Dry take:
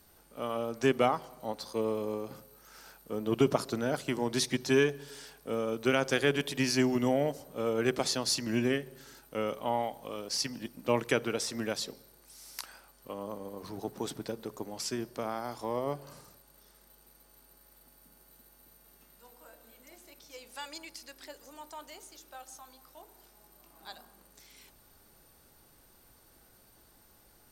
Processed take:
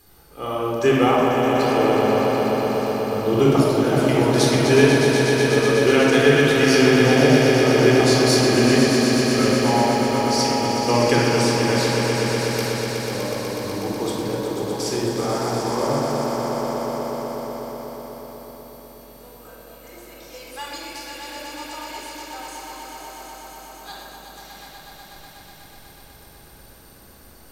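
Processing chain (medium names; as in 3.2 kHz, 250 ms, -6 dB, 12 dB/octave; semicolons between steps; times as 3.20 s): echo with a slow build-up 123 ms, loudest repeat 5, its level -8 dB; simulated room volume 2200 m³, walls mixed, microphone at 3.9 m; trim +3.5 dB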